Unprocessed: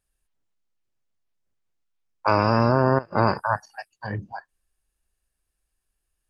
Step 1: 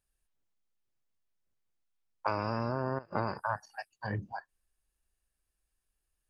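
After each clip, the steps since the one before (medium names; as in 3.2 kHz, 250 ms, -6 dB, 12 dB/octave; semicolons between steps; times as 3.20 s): compression 6:1, threshold -23 dBFS, peak gain reduction 10 dB; trim -4.5 dB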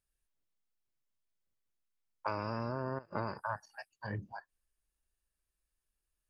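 band-stop 760 Hz, Q 12; trim -4 dB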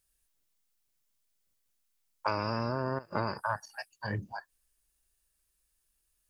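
treble shelf 3.8 kHz +9.5 dB; trim +4.5 dB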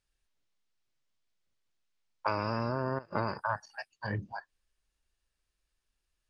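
low-pass 4.7 kHz 12 dB/octave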